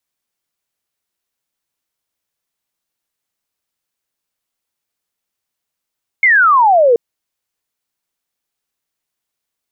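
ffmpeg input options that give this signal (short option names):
-f lavfi -i "aevalsrc='0.473*clip(t/0.002,0,1)*clip((0.73-t)/0.002,0,1)*sin(2*PI*2200*0.73/log(450/2200)*(exp(log(450/2200)*t/0.73)-1))':d=0.73:s=44100"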